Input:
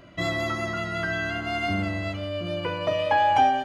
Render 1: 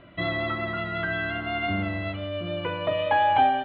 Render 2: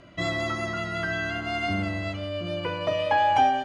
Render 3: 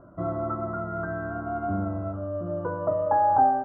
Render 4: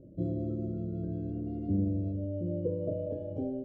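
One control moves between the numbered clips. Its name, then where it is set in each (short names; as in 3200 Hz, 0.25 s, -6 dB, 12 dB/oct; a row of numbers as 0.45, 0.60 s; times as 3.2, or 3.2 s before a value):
elliptic low-pass, frequency: 3800, 10000, 1400, 530 Hz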